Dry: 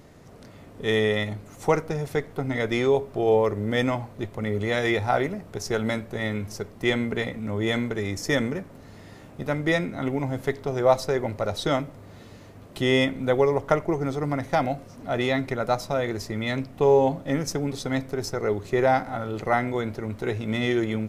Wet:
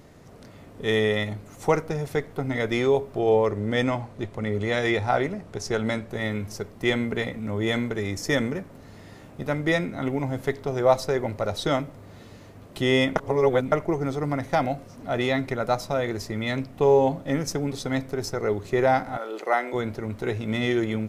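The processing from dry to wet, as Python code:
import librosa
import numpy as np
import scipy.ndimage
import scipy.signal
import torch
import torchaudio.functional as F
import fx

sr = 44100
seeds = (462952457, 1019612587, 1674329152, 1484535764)

y = fx.lowpass(x, sr, hz=10000.0, slope=12, at=(3.19, 6.09))
y = fx.highpass(y, sr, hz=330.0, slope=24, at=(19.17, 19.73))
y = fx.edit(y, sr, fx.reverse_span(start_s=13.16, length_s=0.56), tone=tone)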